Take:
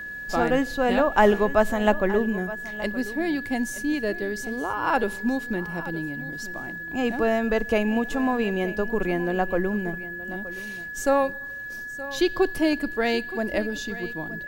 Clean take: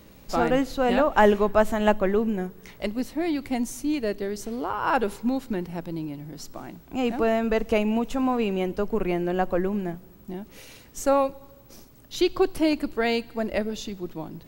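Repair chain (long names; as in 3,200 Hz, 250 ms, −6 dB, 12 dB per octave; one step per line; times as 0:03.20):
notch filter 1,700 Hz, Q 30
echo removal 922 ms −16 dB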